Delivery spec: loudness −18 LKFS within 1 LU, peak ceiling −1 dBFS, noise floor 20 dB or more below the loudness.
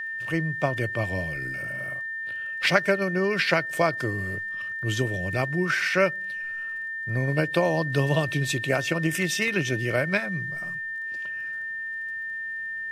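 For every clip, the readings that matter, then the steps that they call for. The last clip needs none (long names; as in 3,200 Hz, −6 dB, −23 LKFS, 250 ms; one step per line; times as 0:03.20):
crackle rate 23 per second; interfering tone 1,800 Hz; level of the tone −30 dBFS; integrated loudness −26.0 LKFS; sample peak −4.0 dBFS; target loudness −18.0 LKFS
→ click removal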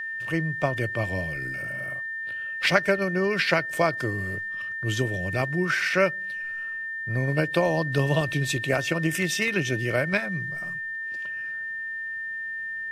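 crackle rate 0 per second; interfering tone 1,800 Hz; level of the tone −30 dBFS
→ notch filter 1,800 Hz, Q 30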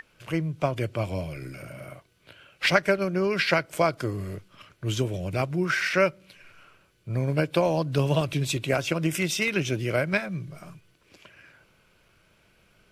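interfering tone none found; integrated loudness −26.5 LKFS; sample peak −4.5 dBFS; target loudness −18.0 LKFS
→ level +8.5 dB
brickwall limiter −1 dBFS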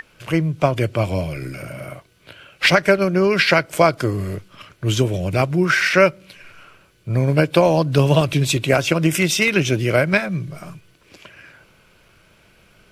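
integrated loudness −18.0 LKFS; sample peak −1.0 dBFS; background noise floor −55 dBFS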